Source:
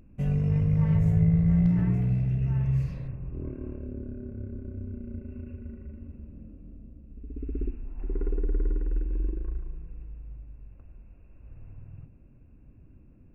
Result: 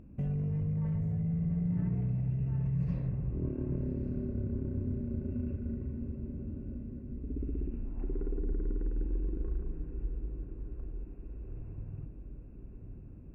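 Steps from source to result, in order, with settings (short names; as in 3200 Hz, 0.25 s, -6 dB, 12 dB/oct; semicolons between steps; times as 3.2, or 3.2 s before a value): HPF 260 Hz 6 dB/oct; tilt -3.5 dB/oct; limiter -27 dBFS, peak gain reduction 18.5 dB; diffused feedback echo 1.154 s, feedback 55%, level -8.5 dB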